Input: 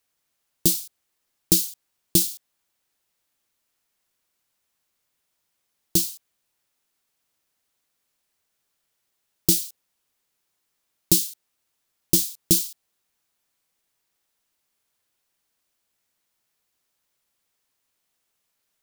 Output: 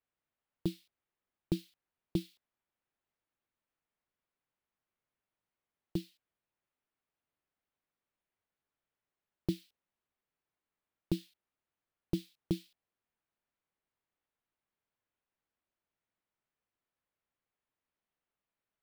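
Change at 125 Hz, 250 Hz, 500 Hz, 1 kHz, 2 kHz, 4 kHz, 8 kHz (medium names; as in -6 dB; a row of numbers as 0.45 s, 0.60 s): -8.0 dB, -8.0 dB, -8.5 dB, no reading, -13.5 dB, -23.0 dB, -37.0 dB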